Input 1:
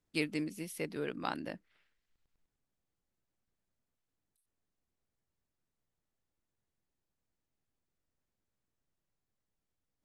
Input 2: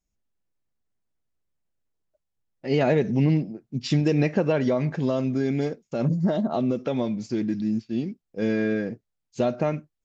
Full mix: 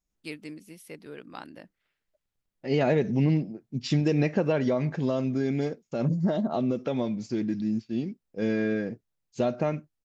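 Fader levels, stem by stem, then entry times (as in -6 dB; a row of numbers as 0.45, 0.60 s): -5.0, -2.5 dB; 0.10, 0.00 s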